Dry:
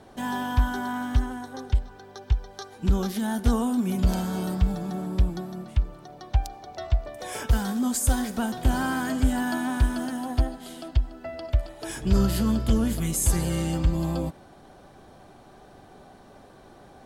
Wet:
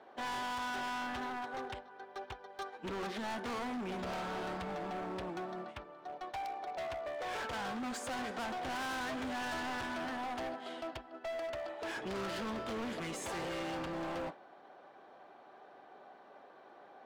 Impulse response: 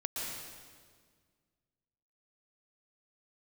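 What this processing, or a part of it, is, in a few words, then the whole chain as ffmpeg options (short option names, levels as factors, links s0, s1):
walkie-talkie: -af "highpass=490,lowpass=2500,asoftclip=type=hard:threshold=0.01,agate=range=0.501:threshold=0.00398:ratio=16:detection=peak,volume=1.41"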